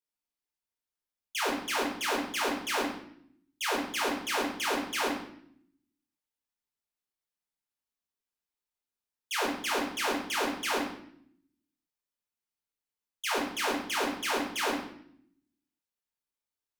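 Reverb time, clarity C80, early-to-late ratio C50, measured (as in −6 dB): 0.65 s, 7.5 dB, 4.5 dB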